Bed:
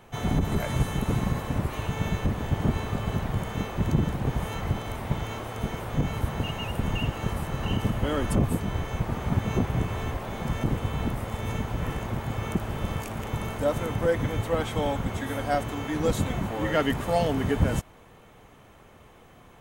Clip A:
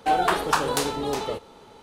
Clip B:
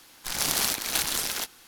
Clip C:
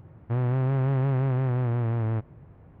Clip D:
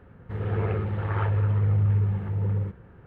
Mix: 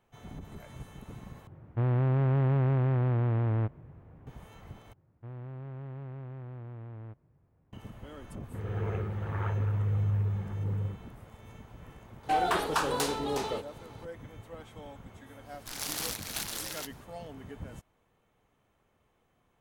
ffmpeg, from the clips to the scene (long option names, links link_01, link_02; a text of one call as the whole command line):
ffmpeg -i bed.wav -i cue0.wav -i cue1.wav -i cue2.wav -i cue3.wav -filter_complex "[3:a]asplit=2[link_01][link_02];[0:a]volume=-19.5dB[link_03];[1:a]asoftclip=type=tanh:threshold=-15dB[link_04];[link_03]asplit=3[link_05][link_06][link_07];[link_05]atrim=end=1.474[link_08];[link_01]atrim=end=2.8,asetpts=PTS-STARTPTS,volume=-1.5dB[link_09];[link_06]atrim=start=4.266:end=4.934[link_10];[link_02]atrim=end=2.8,asetpts=PTS-STARTPTS,volume=-17.5dB[link_11];[link_07]atrim=start=7.726[link_12];[4:a]atrim=end=3.06,asetpts=PTS-STARTPTS,volume=-6.5dB,afade=type=in:duration=0.004:curve=hsin,afade=type=out:start_time=3.056:duration=0.004:curve=hsin,adelay=8240[link_13];[link_04]atrim=end=1.82,asetpts=PTS-STARTPTS,volume=-4dB,afade=type=in:duration=0.004:curve=hsin,afade=type=out:start_time=1.816:duration=0.004:curve=hsin,adelay=12230[link_14];[2:a]atrim=end=1.67,asetpts=PTS-STARTPTS,volume=-9.5dB,afade=type=in:duration=0.1,afade=type=out:start_time=1.57:duration=0.1,adelay=15410[link_15];[link_08][link_09]acrossfade=duration=0.004:curve1=hsin:curve2=hsin[link_16];[link_16][link_10]acrossfade=duration=0.004:curve1=hsin:curve2=hsin[link_17];[link_17][link_11]acrossfade=duration=0.004:curve1=hsin:curve2=hsin[link_18];[link_18][link_12]acrossfade=duration=0.004:curve1=hsin:curve2=hsin[link_19];[link_19][link_13][link_14][link_15]amix=inputs=4:normalize=0" out.wav